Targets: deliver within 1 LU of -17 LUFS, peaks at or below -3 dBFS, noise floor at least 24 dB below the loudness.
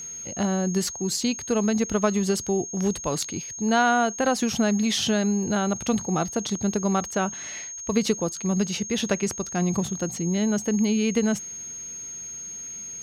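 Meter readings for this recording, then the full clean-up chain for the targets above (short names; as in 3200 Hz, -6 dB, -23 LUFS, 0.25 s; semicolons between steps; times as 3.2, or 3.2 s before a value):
steady tone 6500 Hz; tone level -34 dBFS; loudness -25.0 LUFS; peak -9.0 dBFS; loudness target -17.0 LUFS
-> notch 6500 Hz, Q 30; gain +8 dB; limiter -3 dBFS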